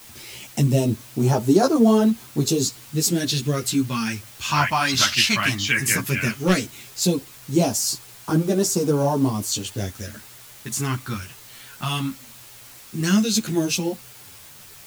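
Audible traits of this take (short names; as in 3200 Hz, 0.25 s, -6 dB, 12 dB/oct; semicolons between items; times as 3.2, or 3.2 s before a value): phasing stages 2, 0.15 Hz, lowest notch 450–2100 Hz; a quantiser's noise floor 8-bit, dither triangular; a shimmering, thickened sound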